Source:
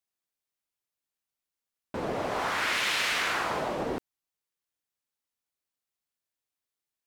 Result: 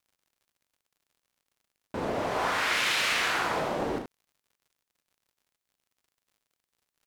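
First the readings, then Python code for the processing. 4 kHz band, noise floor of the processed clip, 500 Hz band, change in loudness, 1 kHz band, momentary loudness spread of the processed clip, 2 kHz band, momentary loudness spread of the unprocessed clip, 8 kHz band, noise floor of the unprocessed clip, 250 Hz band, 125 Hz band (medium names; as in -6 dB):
+1.5 dB, under -85 dBFS, +1.5 dB, +1.5 dB, +1.5 dB, 12 LU, +1.5 dB, 10 LU, +1.5 dB, under -85 dBFS, +1.5 dB, +1.5 dB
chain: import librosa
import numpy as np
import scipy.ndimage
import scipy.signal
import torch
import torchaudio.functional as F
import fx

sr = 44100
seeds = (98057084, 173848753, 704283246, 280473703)

y = fx.room_early_taps(x, sr, ms=(34, 76), db=(-7.5, -7.5))
y = fx.dmg_crackle(y, sr, seeds[0], per_s=81.0, level_db=-56.0)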